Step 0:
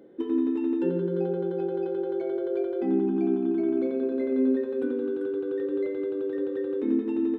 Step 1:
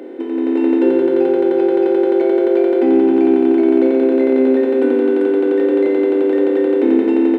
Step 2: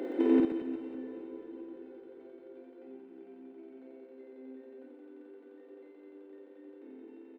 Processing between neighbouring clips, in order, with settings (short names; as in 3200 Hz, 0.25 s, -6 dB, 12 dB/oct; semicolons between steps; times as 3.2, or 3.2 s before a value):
per-bin compression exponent 0.4; steep high-pass 270 Hz 36 dB/oct; AGC gain up to 10 dB; gain +1.5 dB
flipped gate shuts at -11 dBFS, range -34 dB; reverse bouncing-ball echo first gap 50 ms, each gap 1.4×, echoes 5; reverb RT60 5.6 s, pre-delay 0.113 s, DRR 11 dB; gain -4.5 dB